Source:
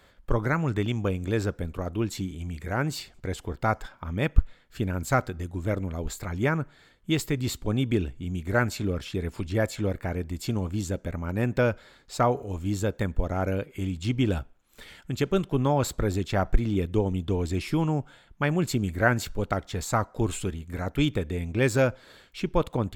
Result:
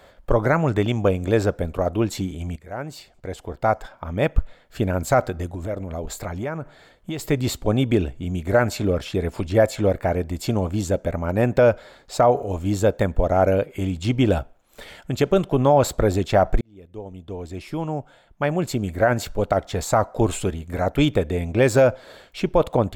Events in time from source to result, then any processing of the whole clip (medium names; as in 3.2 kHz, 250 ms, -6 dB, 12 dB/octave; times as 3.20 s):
2.56–4.81 s: fade in, from -16 dB
5.46–7.29 s: compression, threshold -31 dBFS
16.61–19.88 s: fade in
whole clip: peaking EQ 640 Hz +10 dB 0.95 oct; loudness maximiser +10.5 dB; trim -6 dB